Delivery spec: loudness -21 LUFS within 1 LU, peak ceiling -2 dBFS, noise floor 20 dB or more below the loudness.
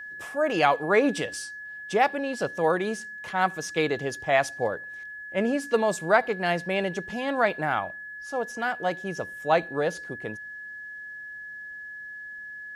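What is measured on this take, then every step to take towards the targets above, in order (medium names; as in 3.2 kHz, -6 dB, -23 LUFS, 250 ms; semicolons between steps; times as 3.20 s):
steady tone 1.7 kHz; tone level -37 dBFS; loudness -26.5 LUFS; peak level -6.0 dBFS; loudness target -21.0 LUFS
-> band-stop 1.7 kHz, Q 30; trim +5.5 dB; peak limiter -2 dBFS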